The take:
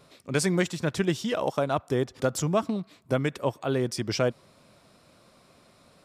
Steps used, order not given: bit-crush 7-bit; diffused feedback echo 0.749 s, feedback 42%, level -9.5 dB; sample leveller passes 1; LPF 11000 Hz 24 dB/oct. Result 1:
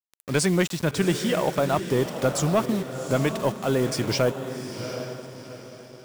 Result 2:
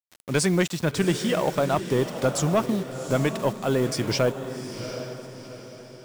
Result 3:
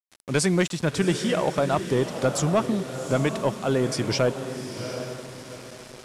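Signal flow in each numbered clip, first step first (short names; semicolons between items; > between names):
LPF > bit-crush > diffused feedback echo > sample leveller; LPF > sample leveller > bit-crush > diffused feedback echo; diffused feedback echo > sample leveller > bit-crush > LPF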